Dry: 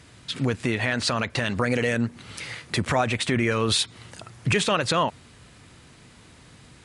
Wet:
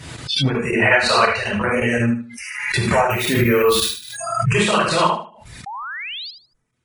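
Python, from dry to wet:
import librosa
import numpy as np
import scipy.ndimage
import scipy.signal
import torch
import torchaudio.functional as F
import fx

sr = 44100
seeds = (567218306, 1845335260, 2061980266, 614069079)

y = fx.rev_gated(x, sr, seeds[0], gate_ms=130, shape='flat', drr_db=-6.0)
y = fx.chopper(y, sr, hz=5.5, depth_pct=60, duty_pct=90)
y = fx.noise_reduce_blind(y, sr, reduce_db=29)
y = fx.resample_bad(y, sr, factor=3, down='none', up='hold', at=(3.1, 4.06))
y = fx.spec_paint(y, sr, seeds[1], shape='rise', start_s=5.66, length_s=0.65, low_hz=760.0, high_hz=5100.0, level_db=-30.0)
y = fx.dynamic_eq(y, sr, hz=5600.0, q=1.2, threshold_db=-34.0, ratio=4.0, max_db=-5)
y = fx.spec_box(y, sr, start_s=0.82, length_s=0.53, low_hz=350.0, high_hz=4500.0, gain_db=6)
y = fx.dereverb_blind(y, sr, rt60_s=0.55)
y = fx.echo_feedback(y, sr, ms=76, feedback_pct=24, wet_db=-9)
y = fx.pre_swell(y, sr, db_per_s=51.0)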